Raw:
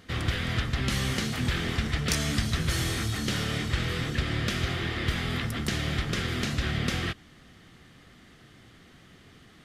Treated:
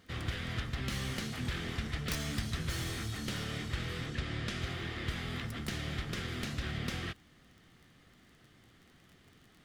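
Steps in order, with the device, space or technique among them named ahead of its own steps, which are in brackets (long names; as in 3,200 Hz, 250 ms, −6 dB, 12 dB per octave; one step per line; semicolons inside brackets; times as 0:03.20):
record under a worn stylus (stylus tracing distortion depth 0.1 ms; surface crackle 20 per second −39 dBFS; pink noise bed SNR 39 dB)
0:04.06–0:04.62: low-pass filter 9,800 Hz 12 dB per octave
level −8.5 dB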